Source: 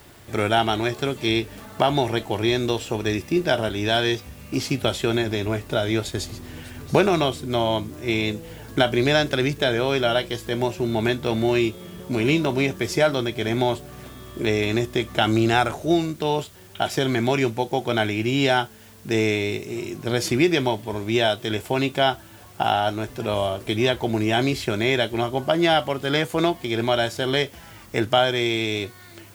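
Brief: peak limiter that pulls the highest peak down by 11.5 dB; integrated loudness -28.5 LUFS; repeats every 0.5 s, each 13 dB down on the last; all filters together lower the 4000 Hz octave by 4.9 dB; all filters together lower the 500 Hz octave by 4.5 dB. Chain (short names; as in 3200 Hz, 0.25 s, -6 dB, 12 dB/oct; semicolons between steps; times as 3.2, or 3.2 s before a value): bell 500 Hz -6.5 dB; bell 4000 Hz -6.5 dB; limiter -17.5 dBFS; feedback echo 0.5 s, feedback 22%, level -13 dB; gain +1 dB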